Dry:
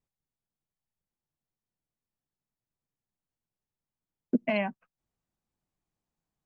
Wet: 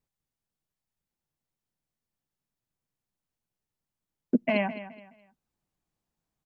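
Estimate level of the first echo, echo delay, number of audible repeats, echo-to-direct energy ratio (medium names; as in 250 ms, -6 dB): -14.0 dB, 211 ms, 3, -13.5 dB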